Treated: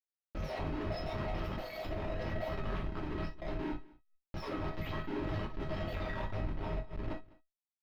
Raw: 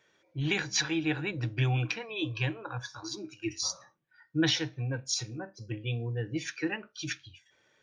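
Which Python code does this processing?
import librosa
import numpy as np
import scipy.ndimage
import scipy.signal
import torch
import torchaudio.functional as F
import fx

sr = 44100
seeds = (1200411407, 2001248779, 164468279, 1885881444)

y = fx.octave_mirror(x, sr, pivot_hz=1300.0)
y = fx.high_shelf(y, sr, hz=3600.0, db=fx.steps((0.0, 5.5), (5.94, -3.5)))
y = fx.level_steps(y, sr, step_db=16)
y = fx.schmitt(y, sr, flips_db=-42.5)
y = fx.air_absorb(y, sr, metres=330.0)
y = fx.comb_fb(y, sr, f0_hz=640.0, decay_s=0.18, harmonics='all', damping=0.0, mix_pct=80)
y = y + 10.0 ** (-22.5 / 20.0) * np.pad(y, (int(203 * sr / 1000.0), 0))[:len(y)]
y = fx.rev_gated(y, sr, seeds[0], gate_ms=90, shape='falling', drr_db=-2.5)
y = fx.pre_swell(y, sr, db_per_s=120.0)
y = y * librosa.db_to_amplitude(11.0)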